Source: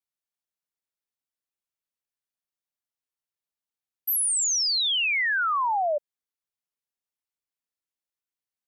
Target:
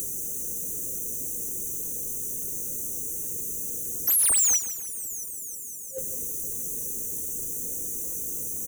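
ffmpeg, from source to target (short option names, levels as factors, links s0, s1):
-filter_complex "[0:a]aeval=exprs='val(0)+0.5*0.0112*sgn(val(0))':c=same,afftfilt=real='re*(1-between(b*sr/4096,530,5800))':imag='im*(1-between(b*sr/4096,530,5800))':win_size=4096:overlap=0.75,asplit=2[s0][s1];[s1]acompressor=mode=upward:threshold=0.01:ratio=2.5,volume=1.26[s2];[s0][s2]amix=inputs=2:normalize=0,asoftclip=type=tanh:threshold=0.0355,asplit=2[s3][s4];[s4]aecho=0:1:158|316|474|632|790:0.224|0.112|0.056|0.028|0.014[s5];[s3][s5]amix=inputs=2:normalize=0,volume=2.66"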